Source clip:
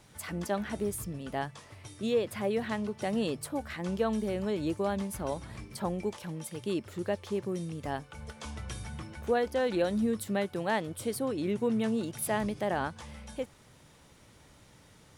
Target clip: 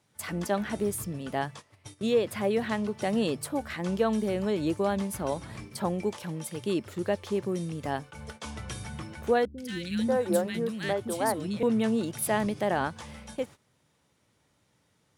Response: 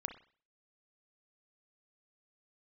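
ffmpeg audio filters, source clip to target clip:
-filter_complex "[0:a]agate=range=0.178:threshold=0.00501:ratio=16:detection=peak,highpass=83,asettb=1/sr,asplit=3[s0][s1][s2];[s0]atrim=end=9.454[s3];[s1]atrim=start=9.45:end=11.63,asetpts=PTS-STARTPTS,afade=t=in:d=0.004:c=qsin,afade=t=out:st=2.176:d=0.004:c=qsin,acrossover=split=270|1700[s4][s5][s6];[s6]adelay=130[s7];[s5]adelay=540[s8];[s4][s8][s7]amix=inputs=3:normalize=0,atrim=end_sample=96138[s9];[s2]atrim=start=11.626[s10];[s3][s9]acrossfade=d=0.004:c1=hsin:c2=qsin[s11];[s11][s10]acrossfade=d=0.004:c1=qsin:c2=hsin,volume=1.5"

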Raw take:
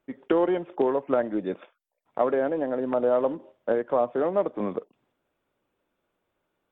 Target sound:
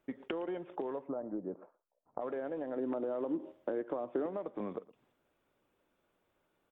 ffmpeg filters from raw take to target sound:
-filter_complex "[0:a]alimiter=limit=0.133:level=0:latency=1,acompressor=threshold=0.0158:ratio=6,asplit=3[s0][s1][s2];[s0]afade=t=out:st=1.06:d=0.02[s3];[s1]lowpass=f=1100:w=0.5412,lowpass=f=1100:w=1.3066,afade=t=in:st=1.06:d=0.02,afade=t=out:st=2.2:d=0.02[s4];[s2]afade=t=in:st=2.2:d=0.02[s5];[s3][s4][s5]amix=inputs=3:normalize=0,asettb=1/sr,asplit=3[s6][s7][s8];[s6]atrim=end=2.764[s9];[s7]atrim=start=2.76:end=4.26,asetpts=PTS-STARTPTS,afade=t=in:d=0.004:c=qsin,afade=t=out:st=1.496:d=0.004:c=qsin,equalizer=f=320:t=o:w=0.53:g=11[s10];[s8]atrim=start=4.256[s11];[s9][s10]acrossfade=d=0.004:c1=hsin:c2=qsin[s12];[s12][s11]acrossfade=d=0.004:c1=qsin:c2=hsin,asplit=2[s13][s14];[s14]aecho=0:1:115:0.0944[s15];[s13][s15]amix=inputs=2:normalize=0"

